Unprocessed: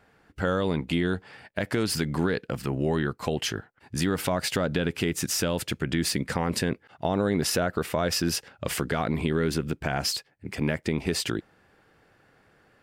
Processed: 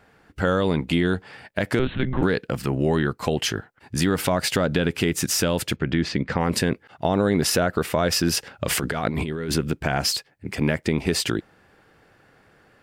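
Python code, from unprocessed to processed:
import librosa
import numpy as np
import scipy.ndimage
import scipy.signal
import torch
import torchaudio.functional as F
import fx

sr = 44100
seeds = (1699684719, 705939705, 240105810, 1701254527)

y = fx.lpc_monotone(x, sr, seeds[0], pitch_hz=130.0, order=16, at=(1.79, 2.23))
y = fx.air_absorb(y, sr, metres=180.0, at=(5.75, 6.39), fade=0.02)
y = fx.over_compress(y, sr, threshold_db=-30.0, ratio=-1.0, at=(8.37, 9.56))
y = y * librosa.db_to_amplitude(4.5)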